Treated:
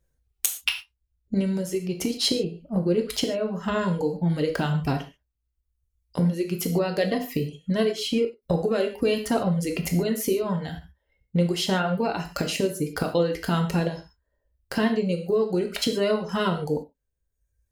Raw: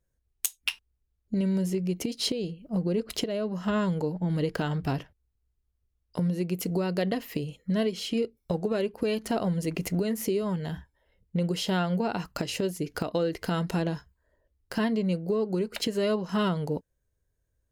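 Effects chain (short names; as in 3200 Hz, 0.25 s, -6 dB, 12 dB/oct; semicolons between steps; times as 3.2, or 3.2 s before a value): reverb removal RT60 1.2 s; non-linear reverb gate 0.17 s falling, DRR 3.5 dB; ending taper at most 340 dB/s; gain +4 dB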